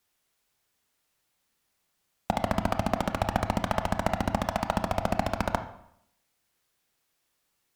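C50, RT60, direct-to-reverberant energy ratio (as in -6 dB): 10.5 dB, 0.75 s, 7.5 dB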